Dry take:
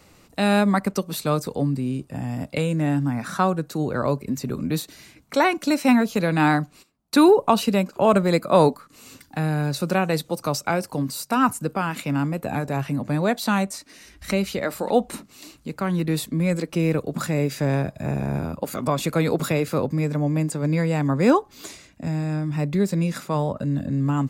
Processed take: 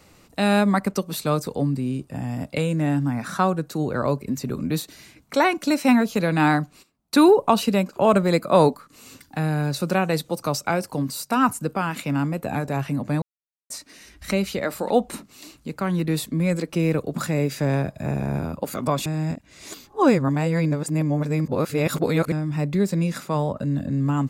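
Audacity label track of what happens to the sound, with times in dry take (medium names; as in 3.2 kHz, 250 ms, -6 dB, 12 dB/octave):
13.220000	13.700000	mute
19.060000	22.320000	reverse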